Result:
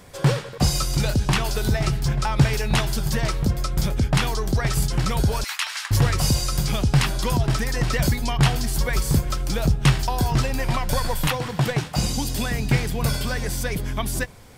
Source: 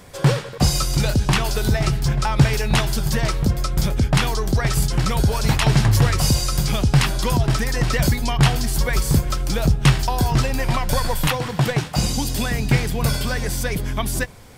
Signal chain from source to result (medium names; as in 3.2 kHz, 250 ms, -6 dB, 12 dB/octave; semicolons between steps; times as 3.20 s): 5.44–5.91 s: high-pass 1.2 kHz 24 dB/octave; trim -2.5 dB